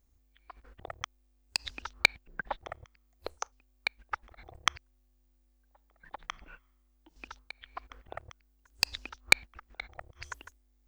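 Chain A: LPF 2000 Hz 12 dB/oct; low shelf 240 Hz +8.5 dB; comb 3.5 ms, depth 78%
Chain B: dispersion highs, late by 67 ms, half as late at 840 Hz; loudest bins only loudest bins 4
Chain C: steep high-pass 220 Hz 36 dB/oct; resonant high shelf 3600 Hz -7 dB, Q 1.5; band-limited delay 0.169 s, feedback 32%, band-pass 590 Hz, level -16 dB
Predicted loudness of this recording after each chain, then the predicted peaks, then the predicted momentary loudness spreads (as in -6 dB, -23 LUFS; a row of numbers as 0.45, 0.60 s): -36.0, -38.0, -32.0 LUFS; -3.5, -15.0, -3.0 dBFS; 21, 23, 22 LU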